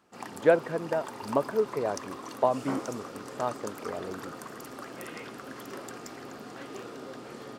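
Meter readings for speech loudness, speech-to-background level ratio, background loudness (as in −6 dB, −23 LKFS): −30.0 LKFS, 11.0 dB, −41.0 LKFS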